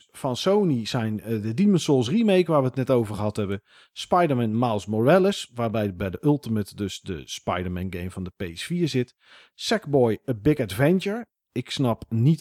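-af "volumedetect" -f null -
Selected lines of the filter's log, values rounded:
mean_volume: -23.7 dB
max_volume: -8.2 dB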